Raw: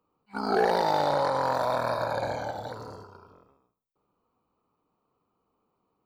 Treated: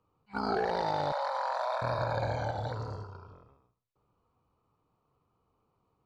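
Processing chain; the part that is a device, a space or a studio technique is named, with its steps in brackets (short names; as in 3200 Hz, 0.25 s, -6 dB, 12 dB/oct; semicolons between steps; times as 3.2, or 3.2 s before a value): jukebox (LPF 5800 Hz 12 dB/oct; resonant low shelf 160 Hz +7.5 dB, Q 1.5; compressor, threshold -27 dBFS, peak gain reduction 7.5 dB); 1.12–1.82 steep high-pass 560 Hz 48 dB/oct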